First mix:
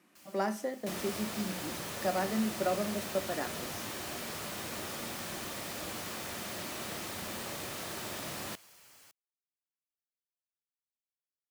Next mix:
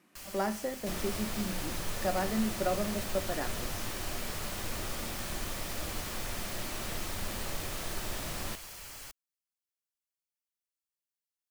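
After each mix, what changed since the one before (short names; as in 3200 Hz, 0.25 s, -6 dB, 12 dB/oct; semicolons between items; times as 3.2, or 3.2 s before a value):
first sound +12.0 dB; master: remove HPF 140 Hz 12 dB/oct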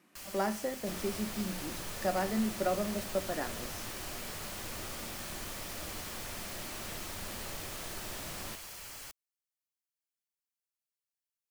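second sound -4.0 dB; master: add low shelf 62 Hz -7 dB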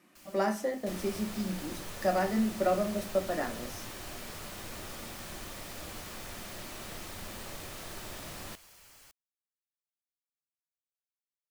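speech: send +8.5 dB; first sound -10.5 dB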